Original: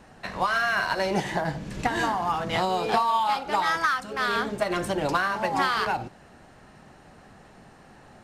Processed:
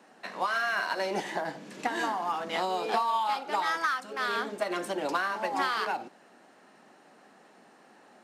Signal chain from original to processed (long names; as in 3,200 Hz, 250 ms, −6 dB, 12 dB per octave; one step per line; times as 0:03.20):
high-pass filter 230 Hz 24 dB per octave
level −4.5 dB